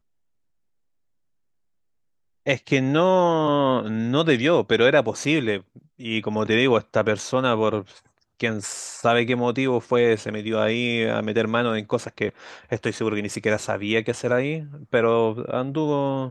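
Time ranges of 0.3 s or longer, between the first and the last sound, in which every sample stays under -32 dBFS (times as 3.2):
5.58–6.02
7.82–8.4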